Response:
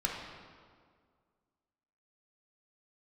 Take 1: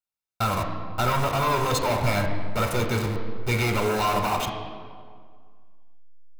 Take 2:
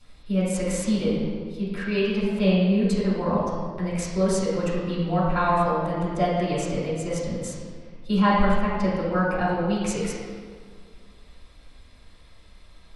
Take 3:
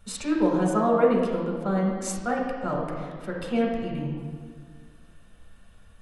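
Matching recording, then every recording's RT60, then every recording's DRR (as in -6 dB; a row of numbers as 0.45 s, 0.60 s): 3; 1.9 s, 1.9 s, 1.9 s; 3.0 dB, -8.5 dB, -2.0 dB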